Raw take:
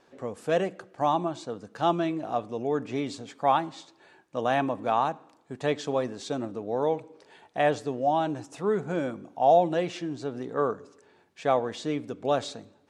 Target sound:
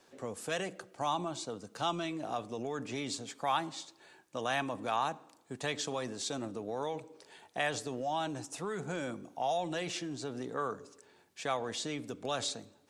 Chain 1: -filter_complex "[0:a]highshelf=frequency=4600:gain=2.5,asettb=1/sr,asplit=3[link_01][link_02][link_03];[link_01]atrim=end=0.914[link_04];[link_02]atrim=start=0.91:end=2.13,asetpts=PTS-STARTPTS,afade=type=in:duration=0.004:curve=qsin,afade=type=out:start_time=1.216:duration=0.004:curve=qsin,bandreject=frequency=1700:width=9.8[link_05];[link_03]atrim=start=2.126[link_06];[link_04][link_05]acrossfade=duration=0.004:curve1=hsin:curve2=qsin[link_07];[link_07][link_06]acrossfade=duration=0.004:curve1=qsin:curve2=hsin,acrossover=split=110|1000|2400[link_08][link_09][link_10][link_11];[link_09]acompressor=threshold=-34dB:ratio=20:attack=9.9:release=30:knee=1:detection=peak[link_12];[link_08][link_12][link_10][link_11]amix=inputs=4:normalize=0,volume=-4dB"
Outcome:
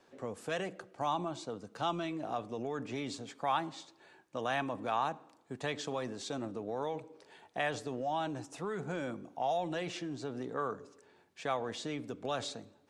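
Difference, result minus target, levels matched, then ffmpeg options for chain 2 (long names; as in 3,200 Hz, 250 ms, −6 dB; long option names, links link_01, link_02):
8,000 Hz band −7.0 dB
-filter_complex "[0:a]highshelf=frequency=4600:gain=13.5,asettb=1/sr,asplit=3[link_01][link_02][link_03];[link_01]atrim=end=0.914[link_04];[link_02]atrim=start=0.91:end=2.13,asetpts=PTS-STARTPTS,afade=type=in:duration=0.004:curve=qsin,afade=type=out:start_time=1.216:duration=0.004:curve=qsin,bandreject=frequency=1700:width=9.8[link_05];[link_03]atrim=start=2.126[link_06];[link_04][link_05]acrossfade=duration=0.004:curve1=hsin:curve2=qsin[link_07];[link_07][link_06]acrossfade=duration=0.004:curve1=qsin:curve2=hsin,acrossover=split=110|1000|2400[link_08][link_09][link_10][link_11];[link_09]acompressor=threshold=-34dB:ratio=20:attack=9.9:release=30:knee=1:detection=peak[link_12];[link_08][link_12][link_10][link_11]amix=inputs=4:normalize=0,volume=-4dB"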